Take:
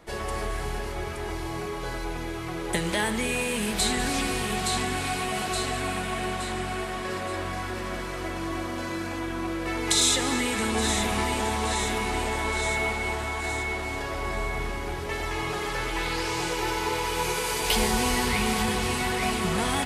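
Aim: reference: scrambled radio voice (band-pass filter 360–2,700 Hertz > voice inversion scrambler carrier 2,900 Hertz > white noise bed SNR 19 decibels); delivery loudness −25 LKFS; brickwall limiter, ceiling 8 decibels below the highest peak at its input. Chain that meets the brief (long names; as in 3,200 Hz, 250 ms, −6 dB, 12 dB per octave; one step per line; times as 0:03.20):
brickwall limiter −17.5 dBFS
band-pass filter 360–2,700 Hz
voice inversion scrambler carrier 2,900 Hz
white noise bed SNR 19 dB
level +5 dB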